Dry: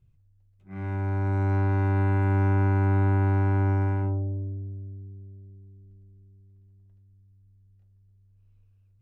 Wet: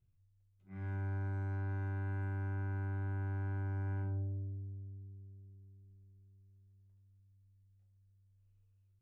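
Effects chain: limiter -23 dBFS, peak gain reduction 7 dB; resonator 92 Hz, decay 0.46 s, harmonics all, mix 80%; gain -2 dB

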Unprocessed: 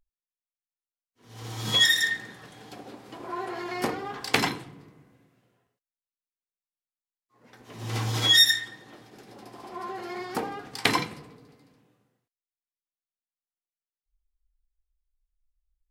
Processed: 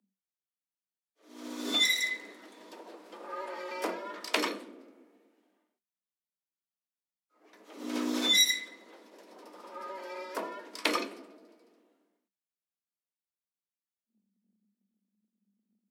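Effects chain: octaver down 1 oct, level 0 dB; frequency shift +190 Hz; gain -6 dB

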